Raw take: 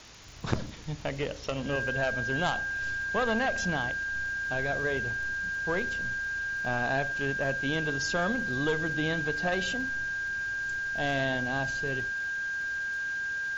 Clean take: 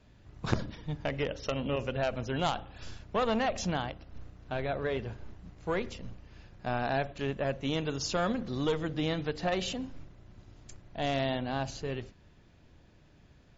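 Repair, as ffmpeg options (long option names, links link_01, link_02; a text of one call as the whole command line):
ffmpeg -i in.wav -af "adeclick=threshold=4,bandreject=frequency=1600:width=30,afwtdn=0.0045" out.wav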